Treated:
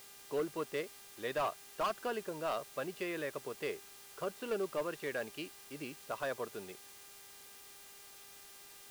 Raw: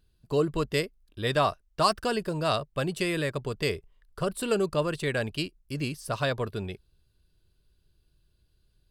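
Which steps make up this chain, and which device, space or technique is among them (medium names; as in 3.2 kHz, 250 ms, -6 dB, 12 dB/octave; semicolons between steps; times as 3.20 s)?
aircraft radio (band-pass 320–2400 Hz; hard clipper -21.5 dBFS, distortion -14 dB; mains buzz 400 Hz, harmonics 32, -52 dBFS -1 dB/octave; white noise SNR 16 dB); trim -7.5 dB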